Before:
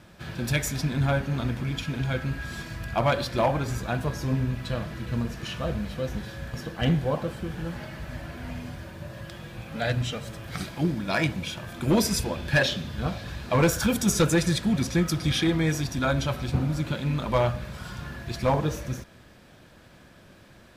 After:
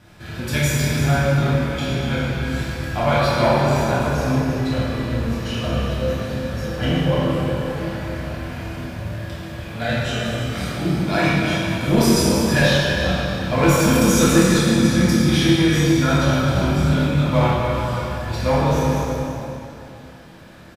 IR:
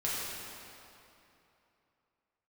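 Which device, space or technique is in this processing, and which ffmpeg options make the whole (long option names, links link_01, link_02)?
cave: -filter_complex "[0:a]aecho=1:1:334:0.282[link_01];[1:a]atrim=start_sample=2205[link_02];[link_01][link_02]afir=irnorm=-1:irlink=0,asettb=1/sr,asplit=3[link_03][link_04][link_05];[link_03]atrim=end=16.534[link_06];[link_04]atrim=start=16.53:end=17.08,asetpts=PTS-STARTPTS,afade=type=in:duration=0.004:curve=qsin,afade=type=out:start_time=0.546:duration=0.004:curve=qsin,asplit=2[link_07][link_08];[link_08]adelay=32,volume=-4dB[link_09];[link_07][link_09]amix=inputs=2:normalize=0,atrim=end_sample=24255[link_10];[link_05]atrim=start=17.076[link_11];[link_06][link_10]acrossfade=duration=0.004:curve1=hsin:curve2=qsin[link_12];[link_12][link_11]acrossfade=duration=0.004:curve1=qsin:curve2=hsin,asplit=2[link_13][link_14];[link_14]adelay=27,volume=-5.5dB[link_15];[link_13][link_15]amix=inputs=2:normalize=0"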